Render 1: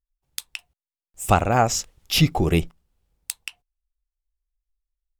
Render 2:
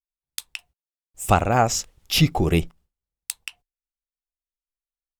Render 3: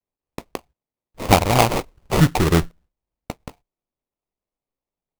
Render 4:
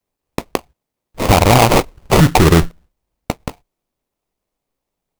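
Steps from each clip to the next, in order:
gate with hold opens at -56 dBFS
sample-rate reducer 1.6 kHz, jitter 20%; trim +3 dB
loudness maximiser +12 dB; trim -1 dB

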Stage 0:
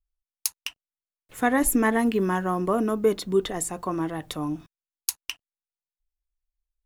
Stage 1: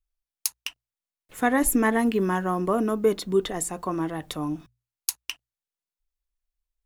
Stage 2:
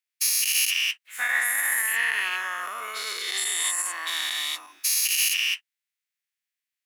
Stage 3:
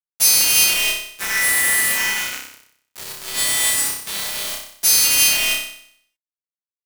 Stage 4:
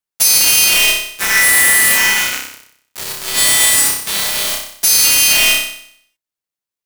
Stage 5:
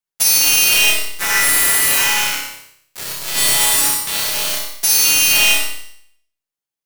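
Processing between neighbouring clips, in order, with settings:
hum notches 60/120 Hz
every event in the spectrogram widened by 480 ms; peak limiter -11 dBFS, peak gain reduction 10.5 dB; resonant high-pass 2 kHz, resonance Q 2.5; trim -2.5 dB
partials quantised in pitch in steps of 2 st; small samples zeroed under -17 dBFS; flutter echo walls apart 5.3 m, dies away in 0.64 s; trim -1 dB
peak limiter -9 dBFS, peak gain reduction 6.5 dB; trim +8 dB
feedback comb 140 Hz, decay 0.17 s, harmonics all, mix 70%; on a send at -4 dB: reverberation RT60 0.50 s, pre-delay 37 ms; on the sum: trim +3 dB

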